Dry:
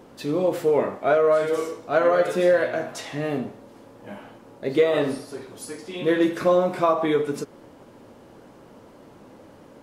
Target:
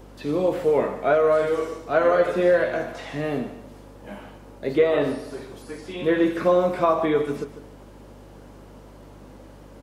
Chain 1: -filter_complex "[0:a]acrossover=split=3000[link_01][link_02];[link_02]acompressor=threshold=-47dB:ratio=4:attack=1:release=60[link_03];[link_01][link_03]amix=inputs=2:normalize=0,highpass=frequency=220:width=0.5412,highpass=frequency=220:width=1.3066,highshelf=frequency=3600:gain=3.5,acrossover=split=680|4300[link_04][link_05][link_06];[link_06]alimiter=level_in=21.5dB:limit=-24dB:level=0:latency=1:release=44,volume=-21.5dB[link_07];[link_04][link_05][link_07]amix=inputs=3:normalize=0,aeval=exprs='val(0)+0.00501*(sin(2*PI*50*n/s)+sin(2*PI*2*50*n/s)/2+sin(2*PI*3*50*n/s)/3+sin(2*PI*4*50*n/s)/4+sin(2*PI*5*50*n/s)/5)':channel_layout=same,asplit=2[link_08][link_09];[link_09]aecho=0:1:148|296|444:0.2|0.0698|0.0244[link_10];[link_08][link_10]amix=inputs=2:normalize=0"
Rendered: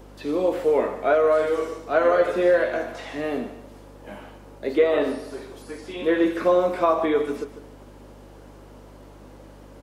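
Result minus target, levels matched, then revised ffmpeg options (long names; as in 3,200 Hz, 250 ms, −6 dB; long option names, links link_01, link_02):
125 Hz band −7.5 dB
-filter_complex "[0:a]acrossover=split=3000[link_01][link_02];[link_02]acompressor=threshold=-47dB:ratio=4:attack=1:release=60[link_03];[link_01][link_03]amix=inputs=2:normalize=0,highpass=frequency=100:width=0.5412,highpass=frequency=100:width=1.3066,highshelf=frequency=3600:gain=3.5,acrossover=split=680|4300[link_04][link_05][link_06];[link_06]alimiter=level_in=21.5dB:limit=-24dB:level=0:latency=1:release=44,volume=-21.5dB[link_07];[link_04][link_05][link_07]amix=inputs=3:normalize=0,aeval=exprs='val(0)+0.00501*(sin(2*PI*50*n/s)+sin(2*PI*2*50*n/s)/2+sin(2*PI*3*50*n/s)/3+sin(2*PI*4*50*n/s)/4+sin(2*PI*5*50*n/s)/5)':channel_layout=same,asplit=2[link_08][link_09];[link_09]aecho=0:1:148|296|444:0.2|0.0698|0.0244[link_10];[link_08][link_10]amix=inputs=2:normalize=0"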